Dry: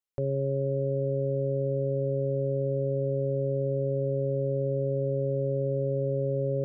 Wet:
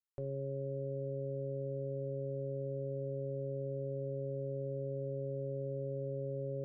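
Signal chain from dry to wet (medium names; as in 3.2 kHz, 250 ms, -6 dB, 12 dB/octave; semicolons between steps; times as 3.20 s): feedback comb 360 Hz, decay 0.63 s, mix 80%; trim +2.5 dB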